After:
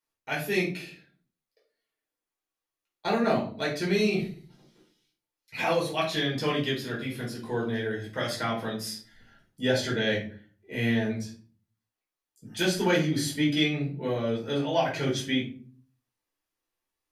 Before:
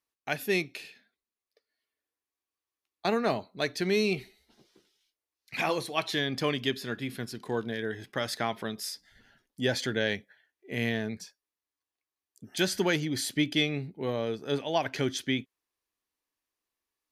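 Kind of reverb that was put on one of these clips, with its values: simulated room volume 320 m³, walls furnished, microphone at 4.7 m; trim -6.5 dB

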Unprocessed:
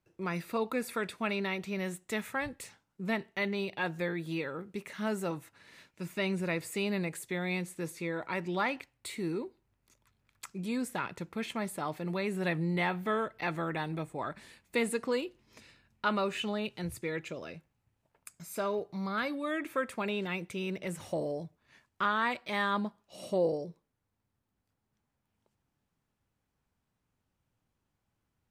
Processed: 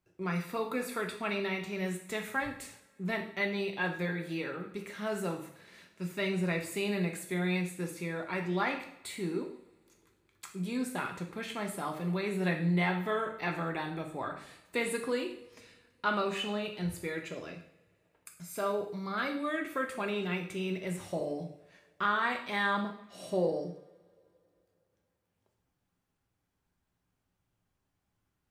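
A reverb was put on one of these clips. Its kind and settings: two-slope reverb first 0.58 s, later 3 s, from -27 dB, DRR 2 dB; trim -2 dB

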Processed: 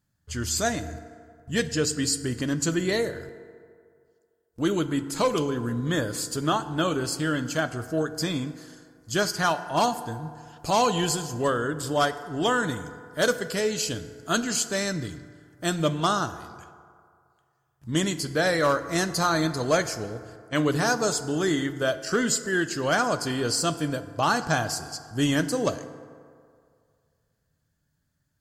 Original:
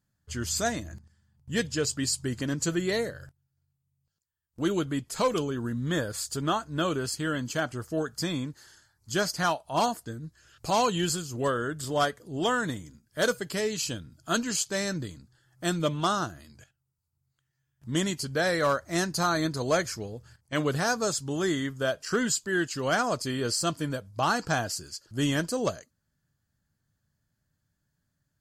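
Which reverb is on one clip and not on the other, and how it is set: FDN reverb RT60 2.2 s, low-frequency decay 0.8×, high-frequency decay 0.45×, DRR 11 dB; trim +2.5 dB

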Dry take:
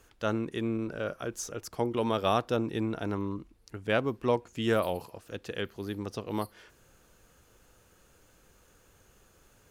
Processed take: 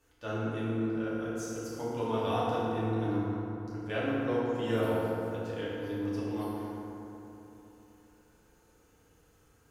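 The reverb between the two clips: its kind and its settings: FDN reverb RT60 3.2 s, low-frequency decay 1.2×, high-frequency decay 0.45×, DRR -9.5 dB; trim -13 dB

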